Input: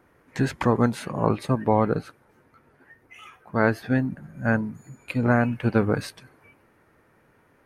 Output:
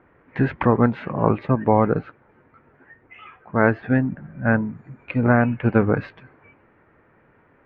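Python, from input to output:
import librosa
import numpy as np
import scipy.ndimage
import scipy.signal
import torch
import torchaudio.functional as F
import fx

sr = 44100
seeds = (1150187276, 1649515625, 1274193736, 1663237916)

y = scipy.signal.sosfilt(scipy.signal.butter(4, 2600.0, 'lowpass', fs=sr, output='sos'), x)
y = y * librosa.db_to_amplitude(3.5)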